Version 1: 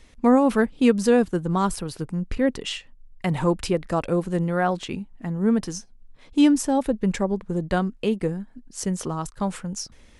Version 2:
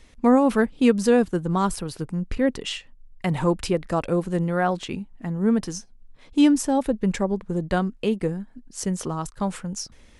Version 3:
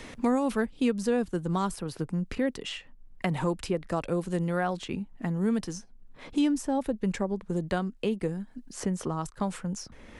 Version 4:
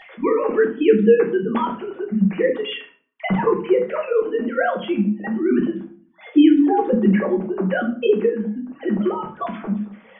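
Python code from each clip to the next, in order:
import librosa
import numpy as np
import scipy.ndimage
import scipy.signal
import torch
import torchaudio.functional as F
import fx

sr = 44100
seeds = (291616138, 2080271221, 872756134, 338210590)

y1 = x
y2 = fx.band_squash(y1, sr, depth_pct=70)
y2 = y2 * 10.0 ** (-6.5 / 20.0)
y3 = fx.sine_speech(y2, sr)
y3 = fx.room_shoebox(y3, sr, seeds[0], volume_m3=33.0, walls='mixed', distance_m=0.62)
y3 = y3 * 10.0 ** (7.5 / 20.0)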